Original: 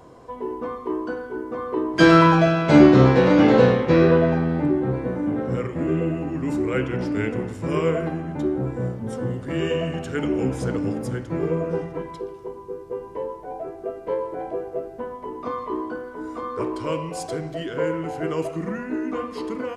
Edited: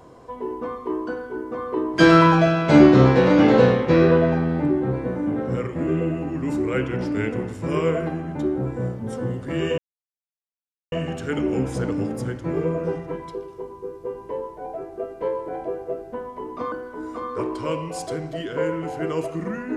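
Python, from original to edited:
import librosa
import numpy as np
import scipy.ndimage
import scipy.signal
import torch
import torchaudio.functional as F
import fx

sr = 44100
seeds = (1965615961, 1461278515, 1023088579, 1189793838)

y = fx.edit(x, sr, fx.insert_silence(at_s=9.78, length_s=1.14),
    fx.cut(start_s=15.58, length_s=0.35), tone=tone)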